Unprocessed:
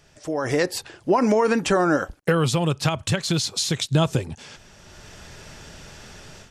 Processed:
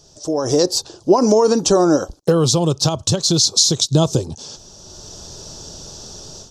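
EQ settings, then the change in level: EQ curve 240 Hz 0 dB, 350 Hz +4 dB, 1100 Hz -2 dB, 2100 Hz -21 dB, 3800 Hz +4 dB, 6000 Hz +11 dB, 9500 Hz -2 dB; +4.0 dB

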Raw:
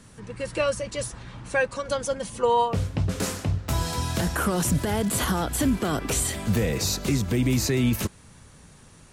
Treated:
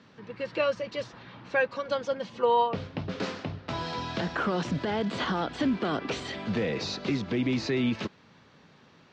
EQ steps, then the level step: HPF 190 Hz 12 dB/oct; inverse Chebyshev low-pass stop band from 10000 Hz, stop band 50 dB; -2.0 dB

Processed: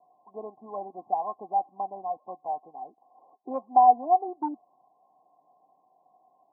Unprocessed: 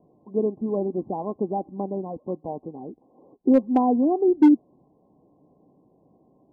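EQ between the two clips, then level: vocal tract filter a; HPF 140 Hz; bell 950 Hz +6.5 dB 1.2 oct; +5.0 dB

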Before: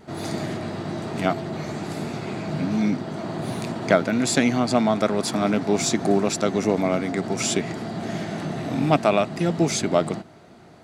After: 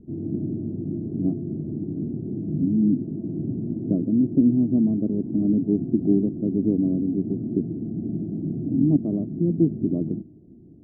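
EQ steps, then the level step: ladder low-pass 350 Hz, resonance 55%; tilt -3.5 dB/oct; 0.0 dB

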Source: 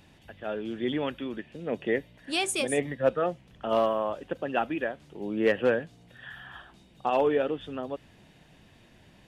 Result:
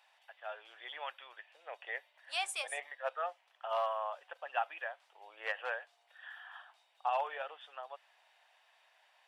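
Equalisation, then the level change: steep high-pass 720 Hz 36 dB/oct; tilt -2 dB/oct; notch 6600 Hz, Q 17; -4.0 dB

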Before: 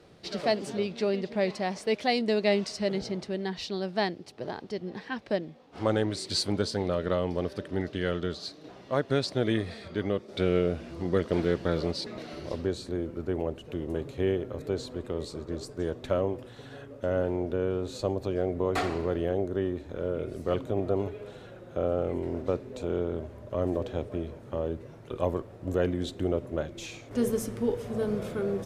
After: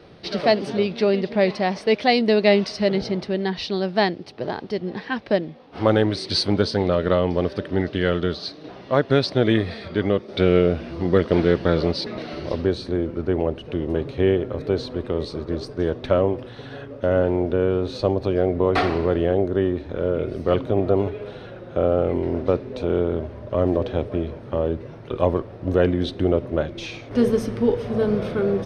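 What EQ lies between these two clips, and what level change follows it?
polynomial smoothing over 15 samples; +8.5 dB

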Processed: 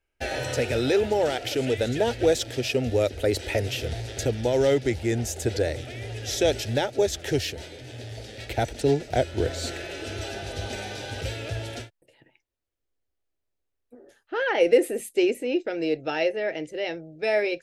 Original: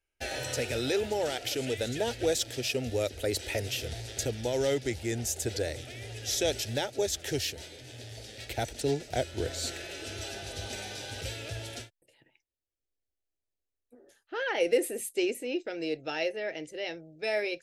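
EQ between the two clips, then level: high shelf 3400 Hz -10 dB; +7.5 dB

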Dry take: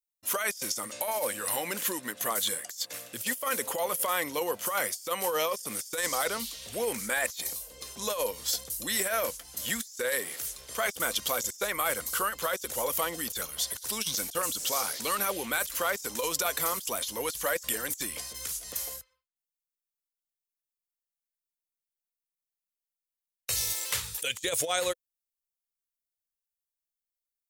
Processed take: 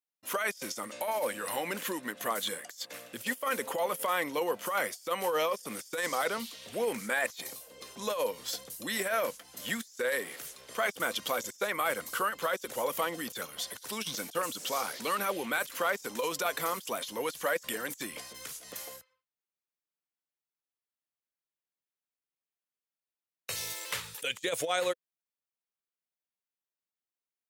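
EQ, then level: HPF 190 Hz 12 dB/oct; tone controls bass +4 dB, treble -9 dB; 0.0 dB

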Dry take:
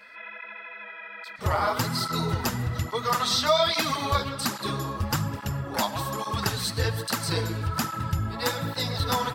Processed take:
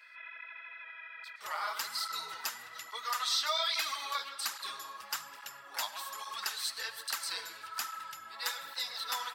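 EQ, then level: HPF 1300 Hz 12 dB/oct; -5.5 dB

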